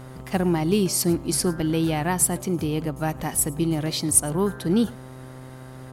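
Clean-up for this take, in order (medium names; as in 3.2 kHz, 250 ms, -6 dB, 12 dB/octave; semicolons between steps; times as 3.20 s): de-hum 129.3 Hz, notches 10; inverse comb 106 ms -23.5 dB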